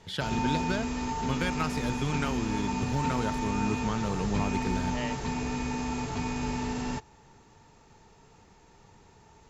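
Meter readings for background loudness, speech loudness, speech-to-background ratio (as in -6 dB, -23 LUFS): -32.5 LUFS, -33.5 LUFS, -1.0 dB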